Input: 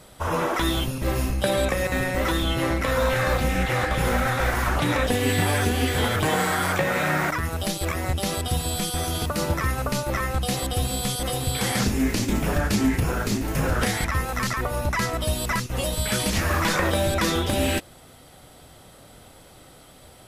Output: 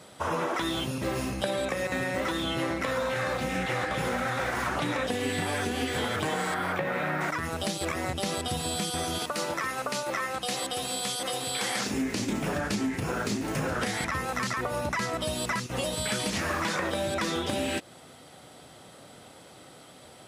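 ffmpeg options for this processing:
-filter_complex "[0:a]asettb=1/sr,asplit=3[a][b][c];[a]atrim=end=6.544[d];[b]atrim=start=6.54:end=7.21,asetpts=PTS-STARTPTS,afade=t=in:d=0.004:c=qsin,afade=t=out:st=0.666:d=0.004:c=qsin,equalizer=f=7.2k:t=o:w=1.5:g=-13[e];[c]atrim=start=7.206[f];[d][e]acrossfade=d=0.004:c1=hsin:c2=qsin[g];[g][f]acrossfade=d=0.004:c1=qsin:c2=hsin,asettb=1/sr,asplit=3[h][i][j];[h]atrim=end=9.184[k];[i]atrim=start=9.18:end=11.91,asetpts=PTS-STARTPTS,afade=t=in:d=0.004:c=qsin,afade=t=out:st=2.726:d=0.004:c=qsin,highpass=f=510:p=1[l];[j]atrim=start=11.906[m];[k][l]acrossfade=d=0.004:c1=hsin:c2=qsin[n];[n][m]acrossfade=d=0.004:c1=qsin:c2=hsin,highpass=140,equalizer=f=13k:w=2.3:g=-14,acompressor=threshold=-26dB:ratio=6"

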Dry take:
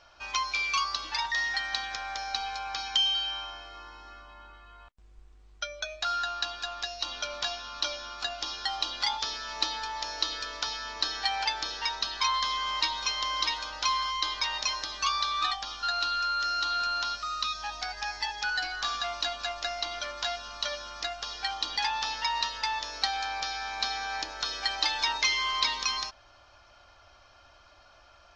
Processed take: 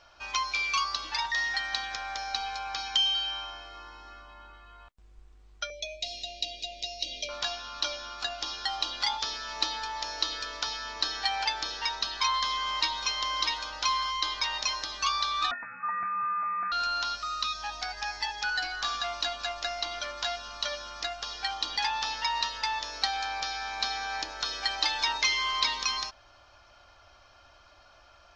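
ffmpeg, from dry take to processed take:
-filter_complex "[0:a]asettb=1/sr,asplit=3[a][b][c];[a]atrim=end=5.704[d];[b]atrim=start=5.7:end=7.29,asetpts=PTS-STARTPTS,afade=t=in:d=0.004:c=qsin,afade=t=out:st=1.586:d=0.004:c=qsin,asuperstop=centerf=1200:order=20:qfactor=0.92[e];[c]atrim=start=7.286[f];[d][e]acrossfade=d=0.004:c1=hsin:c2=qsin[g];[g][f]acrossfade=d=0.004:c1=qsin:c2=hsin,asettb=1/sr,asplit=3[h][i][j];[h]atrim=end=15.514[k];[i]atrim=start=15.51:end=16.72,asetpts=PTS-STARTPTS,afade=t=in:d=0.004:c=qsin,afade=t=out:st=1.206:d=0.004:c=qsin,lowpass=f=2.2k:t=q:w=0.5098,lowpass=f=2.2k:t=q:w=0.6013,lowpass=f=2.2k:t=q:w=0.9,lowpass=f=2.2k:t=q:w=2.563,afreqshift=-2600[l];[j]atrim=start=16.716[m];[k][l]acrossfade=d=0.004:c1=hsin:c2=qsin[n];[n][m]acrossfade=d=0.004:c1=qsin:c2=hsin"

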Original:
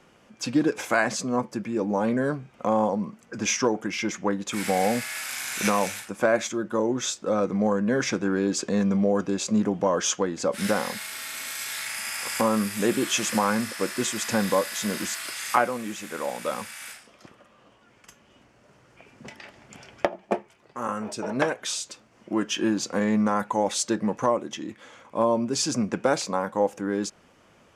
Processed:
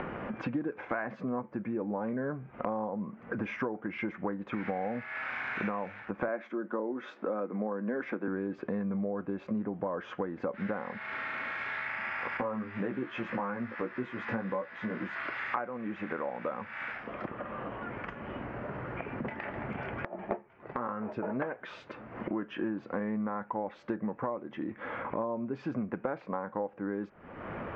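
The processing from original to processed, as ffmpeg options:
-filter_complex "[0:a]asettb=1/sr,asplit=3[a][b][c];[a]atrim=end=6.284[d];[b]atrim=start=6.28:end=8.28,asetpts=PTS-STARTPTS,afade=t=in:d=0.004:c=qsin,afade=t=out:st=1.996:d=0.004:c=qsin,highpass=f=210:w=0.5412,highpass=f=210:w=1.3066[e];[c]atrim=start=8.276[f];[d][e]acrossfade=d=0.004:c1=hsin:c2=qsin[g];[g][f]acrossfade=d=0.004:c1=qsin:c2=hsin,asettb=1/sr,asplit=3[h][i][j];[h]atrim=end=12.374[k];[i]atrim=start=12.37:end=15.16,asetpts=PTS-STARTPTS,afade=t=in:d=0.004:c=qsin,afade=t=out:st=2.786:d=0.004:c=qsin,flanger=delay=15.5:depth=2.1:speed=1.8[l];[j]atrim=start=15.156[m];[k][l]acrossfade=d=0.004:c1=hsin:c2=qsin[n];[n][m]acrossfade=d=0.004:c1=qsin:c2=hsin,asettb=1/sr,asplit=3[o][p][q];[o]atrim=end=19.404[r];[p]atrim=start=19.4:end=20.24,asetpts=PTS-STARTPTS,afade=t=in:d=0.004:c=qsin,afade=t=out:st=0.836:d=0.004:c=qsin,acompressor=threshold=-42dB:ratio=6:attack=3.2:release=140:knee=1:detection=peak[s];[q]atrim=start=20.236[t];[r][s]acrossfade=d=0.004:c1=hsin:c2=qsin[u];[u][t]acrossfade=d=0.004:c1=qsin:c2=hsin,acompressor=mode=upward:threshold=-30dB:ratio=2.5,lowpass=f=2k:w=0.5412,lowpass=f=2k:w=1.3066,acompressor=threshold=-38dB:ratio=5,volume=5.5dB"

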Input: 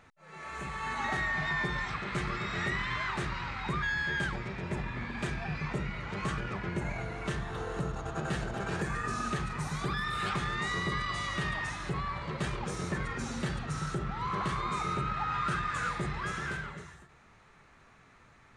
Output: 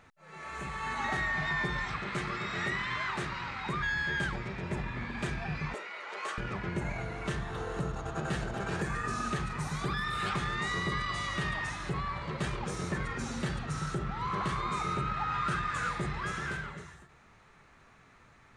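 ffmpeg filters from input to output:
-filter_complex "[0:a]asettb=1/sr,asplit=3[a][b][c];[a]atrim=end=2.104[d];[b]atrim=start=2.1:end=3.8,asetpts=PTS-STARTPTS,afade=t=in:d=0.004:c=qsin,afade=t=out:st=1.696:d=0.004:c=qsin,highpass=f=130:p=1[e];[c]atrim=start=3.796[f];[d][e]acrossfade=d=0.004:c1=hsin:c2=qsin[g];[g][f]acrossfade=d=0.004:c1=qsin:c2=hsin,asettb=1/sr,asplit=3[h][i][j];[h]atrim=end=5.744[k];[i]atrim=start=5.74:end=6.38,asetpts=PTS-STARTPTS,afade=t=in:d=0.004:c=qsin,afade=t=out:st=0.636:d=0.004:c=qsin,highpass=f=440:w=0.5412,highpass=f=440:w=1.3066[l];[j]atrim=start=6.376[m];[k][l]acrossfade=d=0.004:c1=hsin:c2=qsin[n];[n][m]acrossfade=d=0.004:c1=qsin:c2=hsin"

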